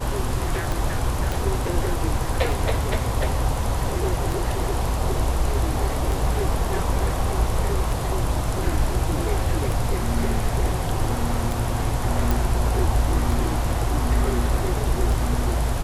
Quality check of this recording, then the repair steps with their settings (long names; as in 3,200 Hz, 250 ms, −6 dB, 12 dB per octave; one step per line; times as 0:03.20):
scratch tick 33 1/3 rpm
0:01.32: click
0:12.31: click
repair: click removal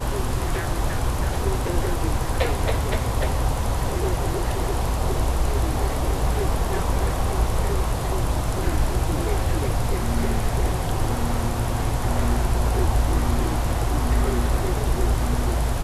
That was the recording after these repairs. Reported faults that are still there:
none of them is left